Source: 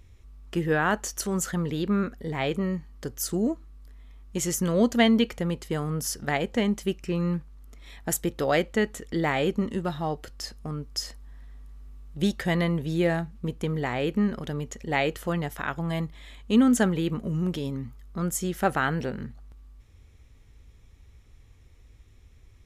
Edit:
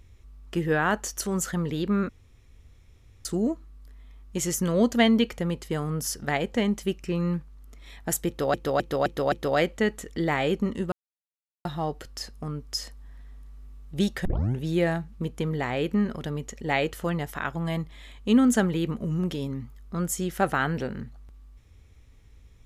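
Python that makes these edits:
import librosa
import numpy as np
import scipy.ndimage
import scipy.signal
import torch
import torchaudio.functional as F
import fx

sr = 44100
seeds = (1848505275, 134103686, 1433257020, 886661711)

y = fx.edit(x, sr, fx.room_tone_fill(start_s=2.09, length_s=1.16),
    fx.repeat(start_s=8.28, length_s=0.26, count=5),
    fx.insert_silence(at_s=9.88, length_s=0.73),
    fx.tape_start(start_s=12.48, length_s=0.35), tone=tone)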